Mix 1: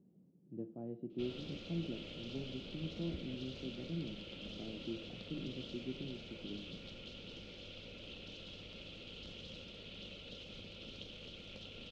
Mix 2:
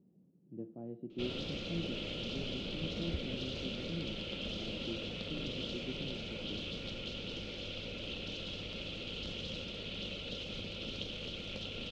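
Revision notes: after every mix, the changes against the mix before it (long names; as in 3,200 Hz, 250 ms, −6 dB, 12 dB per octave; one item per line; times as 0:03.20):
background +8.5 dB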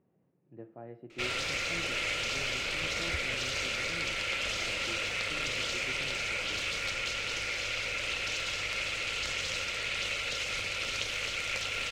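master: remove drawn EQ curve 130 Hz 0 dB, 190 Hz +11 dB, 2,100 Hz −23 dB, 3,200 Hz −3 dB, 8,300 Hz −27 dB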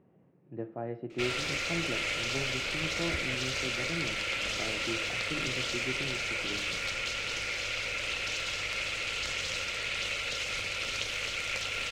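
speech +9.0 dB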